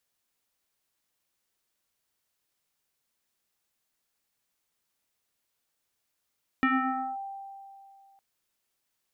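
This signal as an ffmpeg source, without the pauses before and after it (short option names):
-f lavfi -i "aevalsrc='0.1*pow(10,-3*t/2.46)*sin(2*PI*786*t+2.5*clip(1-t/0.54,0,1)*sin(2*PI*0.67*786*t))':d=1.56:s=44100"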